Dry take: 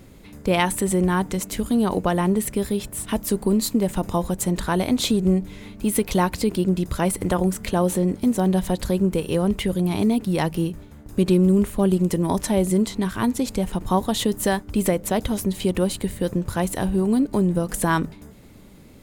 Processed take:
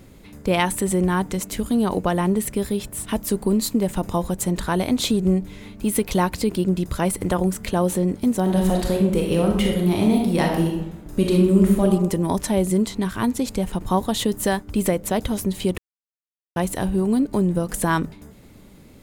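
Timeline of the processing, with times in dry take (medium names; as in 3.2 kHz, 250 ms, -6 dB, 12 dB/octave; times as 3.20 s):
8.42–11.83 s: reverb throw, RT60 0.86 s, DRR 0 dB
15.78–16.56 s: mute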